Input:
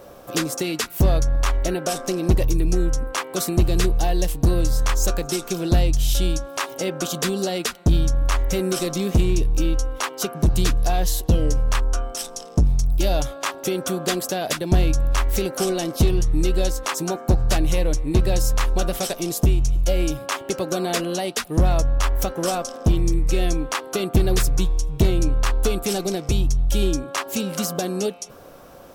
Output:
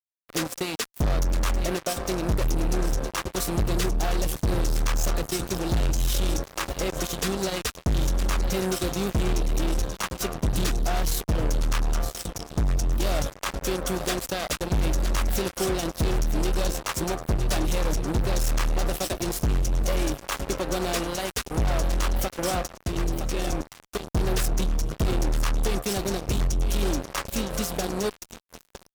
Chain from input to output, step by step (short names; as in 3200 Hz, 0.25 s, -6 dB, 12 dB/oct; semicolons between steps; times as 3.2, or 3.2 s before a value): 22.67–24.12 level quantiser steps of 11 dB; on a send: feedback echo 0.962 s, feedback 55%, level -12 dB; on the sum: fuzz box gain 22 dB, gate -26 dBFS; gain -6.5 dB